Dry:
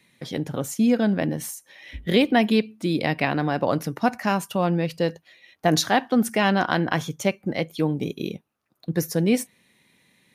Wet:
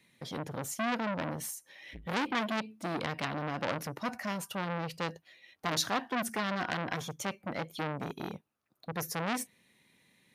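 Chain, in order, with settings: core saturation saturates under 2700 Hz; gain -5.5 dB

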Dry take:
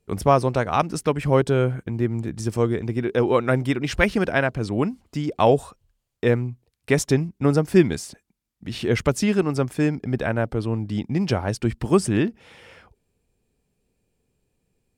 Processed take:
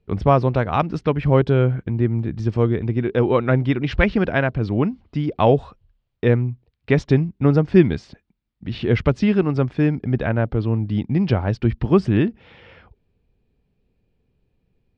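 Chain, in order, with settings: LPF 4100 Hz 24 dB/oct; low shelf 200 Hz +7.5 dB

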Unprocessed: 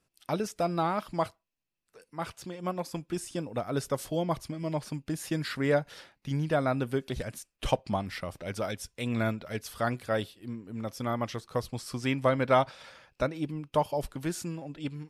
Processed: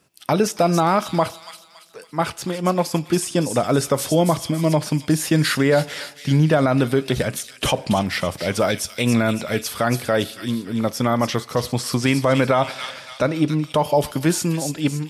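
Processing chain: HPF 100 Hz 12 dB/oct; on a send: thin delay 0.28 s, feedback 41%, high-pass 3500 Hz, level -4 dB; on the sum: two-slope reverb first 0.33 s, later 1.7 s, DRR 17.5 dB; maximiser +21 dB; gain -6.5 dB

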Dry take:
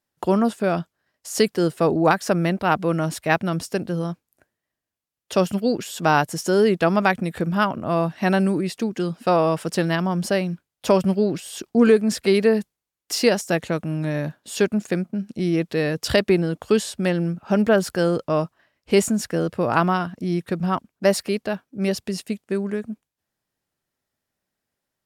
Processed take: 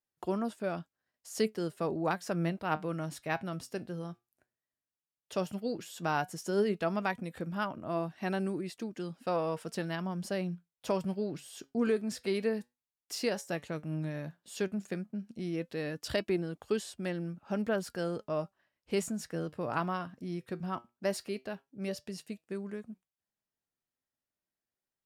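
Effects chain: flange 0.12 Hz, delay 2.4 ms, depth 6.1 ms, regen +78%; gain -9 dB

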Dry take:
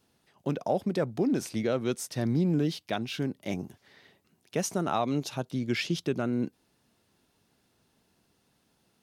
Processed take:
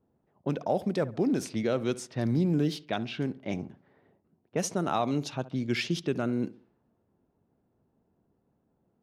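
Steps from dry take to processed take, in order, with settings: darkening echo 68 ms, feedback 38%, low-pass 2200 Hz, level -17 dB; low-pass opened by the level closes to 710 Hz, open at -24.5 dBFS

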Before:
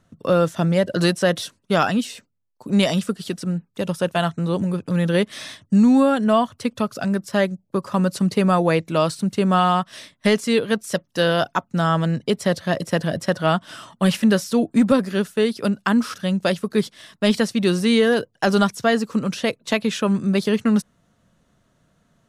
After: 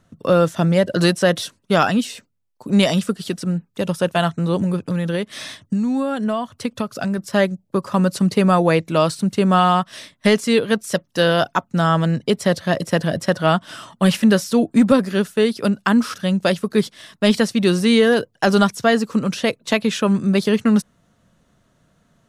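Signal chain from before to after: 4.77–7.18 compressor 6:1, threshold -21 dBFS, peak gain reduction 9.5 dB; gain +2.5 dB

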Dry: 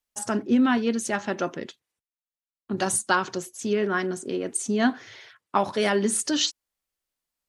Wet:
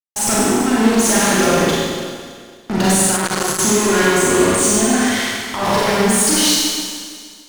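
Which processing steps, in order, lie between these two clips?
negative-ratio compressor -27 dBFS, ratio -0.5; fuzz box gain 37 dB, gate -46 dBFS; Schroeder reverb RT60 1.9 s, combs from 32 ms, DRR -7 dB; 3.16–3.59 core saturation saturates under 1200 Hz; gain -6 dB

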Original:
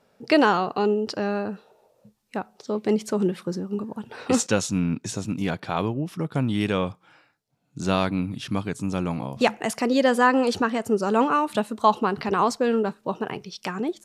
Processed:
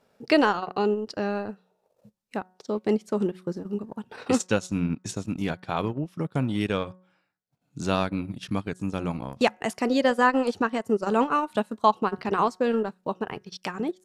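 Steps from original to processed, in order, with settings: de-hum 184 Hz, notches 11; transient shaper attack +1 dB, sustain -12 dB; gain -2 dB

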